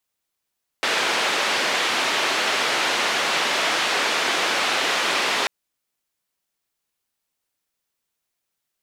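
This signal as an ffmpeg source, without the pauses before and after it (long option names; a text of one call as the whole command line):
ffmpeg -f lavfi -i "anoisesrc=color=white:duration=4.64:sample_rate=44100:seed=1,highpass=frequency=350,lowpass=frequency=3200,volume=-8.7dB" out.wav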